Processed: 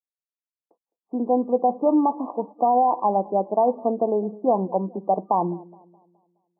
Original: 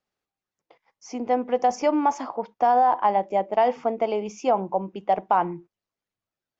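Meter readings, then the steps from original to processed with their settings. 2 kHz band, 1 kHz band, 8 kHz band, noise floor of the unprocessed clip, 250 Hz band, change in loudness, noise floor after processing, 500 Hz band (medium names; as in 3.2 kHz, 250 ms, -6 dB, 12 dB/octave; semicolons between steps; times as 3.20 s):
under -40 dB, -0.5 dB, no reading, under -85 dBFS, +5.5 dB, +1.0 dB, under -85 dBFS, +2.0 dB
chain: FFT band-pass 170–1200 Hz; expander -47 dBFS; tilt shelf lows +7 dB, about 730 Hz; feedback echo behind a low-pass 210 ms, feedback 42%, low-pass 800 Hz, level -21 dB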